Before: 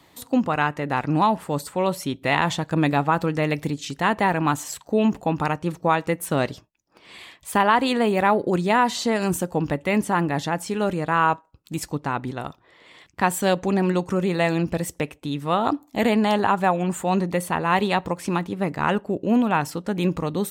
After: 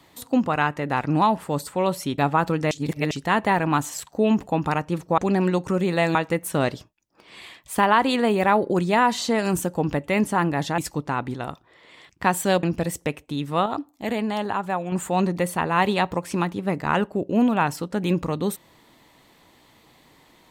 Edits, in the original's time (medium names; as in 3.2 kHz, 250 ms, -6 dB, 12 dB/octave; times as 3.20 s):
2.18–2.92 s: delete
3.45–3.85 s: reverse
10.55–11.75 s: delete
13.60–14.57 s: move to 5.92 s
15.60–16.86 s: gain -6 dB